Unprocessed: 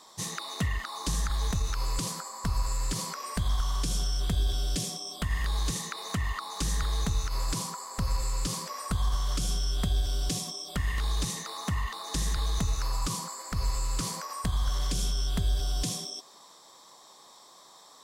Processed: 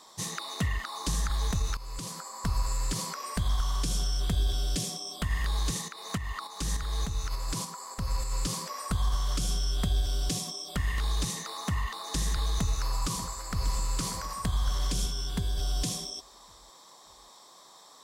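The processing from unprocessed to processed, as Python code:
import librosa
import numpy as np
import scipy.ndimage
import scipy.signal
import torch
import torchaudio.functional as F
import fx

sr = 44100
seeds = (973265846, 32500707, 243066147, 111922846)

y = fx.tremolo_shape(x, sr, shape='saw_up', hz=3.4, depth_pct=fx.line((5.81, 65.0), (8.3, 40.0)), at=(5.81, 8.3), fade=0.02)
y = fx.echo_throw(y, sr, start_s=12.56, length_s=1.18, ms=590, feedback_pct=55, wet_db=-12.0)
y = fx.notch_comb(y, sr, f0_hz=640.0, at=(15.06, 15.58))
y = fx.edit(y, sr, fx.fade_in_from(start_s=1.77, length_s=0.64, floor_db=-15.0), tone=tone)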